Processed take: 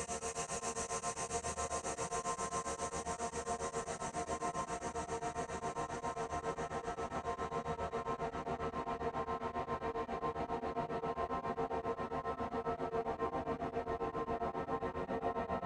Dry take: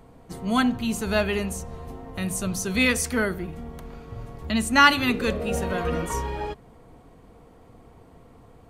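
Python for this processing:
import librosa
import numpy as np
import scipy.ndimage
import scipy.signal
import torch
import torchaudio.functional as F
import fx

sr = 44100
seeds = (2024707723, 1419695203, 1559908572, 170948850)

p1 = scipy.signal.sosfilt(scipy.signal.cheby1(3, 1.0, 8200.0, 'lowpass', fs=sr, output='sos'), x)
p2 = fx.stretch_vocoder_free(p1, sr, factor=1.8)
p3 = fx.filter_sweep_bandpass(p2, sr, from_hz=2600.0, to_hz=390.0, start_s=2.64, end_s=4.3, q=0.7)
p4 = fx.paulstretch(p3, sr, seeds[0], factor=26.0, window_s=1.0, from_s=2.98)
p5 = p4 + fx.echo_split(p4, sr, split_hz=430.0, low_ms=541, high_ms=282, feedback_pct=52, wet_db=-3.5, dry=0)
p6 = p5 * np.abs(np.cos(np.pi * 7.4 * np.arange(len(p5)) / sr))
y = F.gain(torch.from_numpy(p6), 11.0).numpy()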